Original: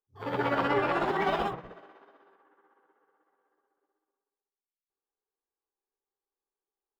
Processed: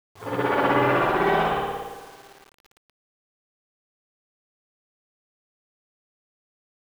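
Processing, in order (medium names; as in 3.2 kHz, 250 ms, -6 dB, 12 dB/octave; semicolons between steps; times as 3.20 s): feedback delay 108 ms, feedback 46%, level -13 dB; spring tank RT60 1.3 s, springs 55 ms, chirp 25 ms, DRR -5.5 dB; word length cut 8-bit, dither none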